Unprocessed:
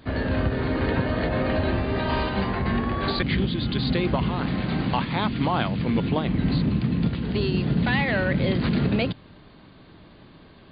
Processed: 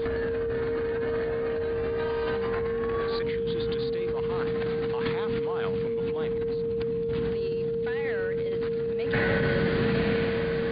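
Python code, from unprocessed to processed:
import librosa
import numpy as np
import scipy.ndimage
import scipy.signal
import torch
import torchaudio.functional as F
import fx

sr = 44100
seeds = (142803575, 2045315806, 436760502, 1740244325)

p1 = x + fx.echo_diffused(x, sr, ms=1109, feedback_pct=40, wet_db=-15.0, dry=0)
p2 = fx.over_compress(p1, sr, threshold_db=-35.0, ratio=-1.0)
p3 = fx.dynamic_eq(p2, sr, hz=1500.0, q=1.4, threshold_db=-53.0, ratio=4.0, max_db=6)
y = p3 + 10.0 ** (-26.0 / 20.0) * np.sin(2.0 * np.pi * 460.0 * np.arange(len(p3)) / sr)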